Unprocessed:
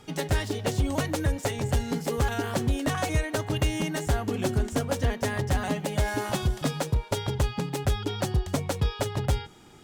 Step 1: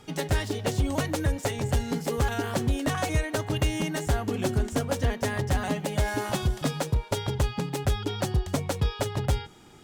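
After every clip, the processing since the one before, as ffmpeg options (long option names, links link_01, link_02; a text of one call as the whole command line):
ffmpeg -i in.wav -af anull out.wav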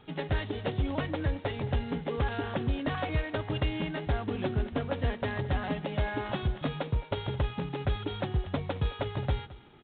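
ffmpeg -i in.wav -af "aecho=1:1:217:0.112,volume=-4dB" -ar 8000 -c:a adpcm_g726 -b:a 24k out.wav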